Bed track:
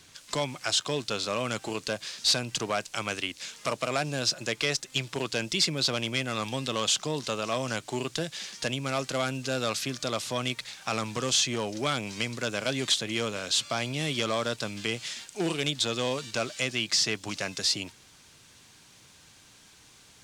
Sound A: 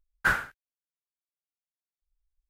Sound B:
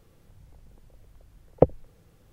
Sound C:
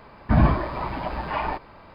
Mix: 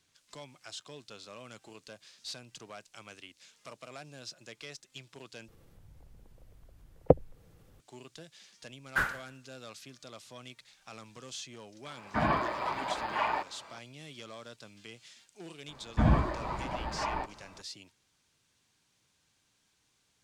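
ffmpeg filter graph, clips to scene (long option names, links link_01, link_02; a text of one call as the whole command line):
ffmpeg -i bed.wav -i cue0.wav -i cue1.wav -i cue2.wav -filter_complex "[3:a]asplit=2[link_01][link_02];[0:a]volume=-18dB[link_03];[2:a]acompressor=mode=upward:threshold=-49dB:ratio=2.5:attack=3.2:release=140:knee=2.83:detection=peak[link_04];[1:a]aecho=1:1:147|294:0.1|0.026[link_05];[link_01]highpass=frequency=750:poles=1[link_06];[link_03]asplit=2[link_07][link_08];[link_07]atrim=end=5.484[link_09];[link_04]atrim=end=2.32,asetpts=PTS-STARTPTS,volume=-3.5dB[link_10];[link_08]atrim=start=7.796[link_11];[link_05]atrim=end=2.49,asetpts=PTS-STARTPTS,volume=-5dB,afade=type=in:duration=0.004:curve=hsin,afade=type=out:start_time=2.486:duration=0.004:curve=hsin,adelay=8710[link_12];[link_06]atrim=end=1.94,asetpts=PTS-STARTPTS,volume=-1dB,afade=type=in:duration=0.004:curve=hsin,afade=type=out:start_time=1.936:duration=0.004:curve=hsin,adelay=11850[link_13];[link_02]atrim=end=1.94,asetpts=PTS-STARTPTS,volume=-7dB,afade=type=in:duration=0.004:curve=hsin,afade=type=out:start_time=1.936:duration=0.004:curve=hsin,adelay=15680[link_14];[link_09][link_10]acrossfade=duration=0.004:curve1=hsin:curve2=hsin[link_15];[link_15][link_11]acrossfade=duration=0.004:curve1=hsin:curve2=hsin[link_16];[link_16][link_12][link_13][link_14]amix=inputs=4:normalize=0" out.wav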